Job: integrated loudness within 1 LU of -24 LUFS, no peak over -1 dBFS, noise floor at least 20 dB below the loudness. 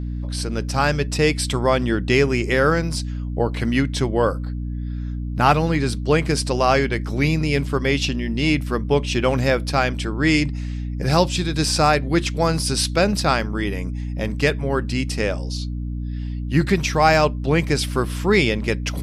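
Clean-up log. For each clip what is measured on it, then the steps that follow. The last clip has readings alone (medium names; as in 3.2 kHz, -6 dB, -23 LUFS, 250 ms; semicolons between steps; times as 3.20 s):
hum 60 Hz; highest harmonic 300 Hz; hum level -24 dBFS; loudness -21.0 LUFS; peak level -3.0 dBFS; loudness target -24.0 LUFS
-> de-hum 60 Hz, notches 5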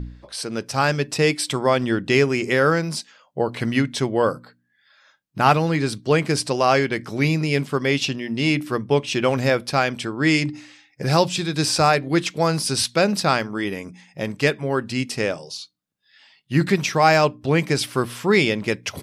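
hum not found; loudness -21.0 LUFS; peak level -3.0 dBFS; loudness target -24.0 LUFS
-> trim -3 dB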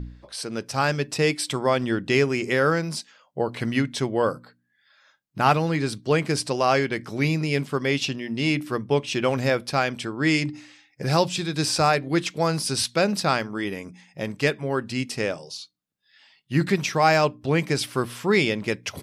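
loudness -24.0 LUFS; peak level -6.0 dBFS; noise floor -67 dBFS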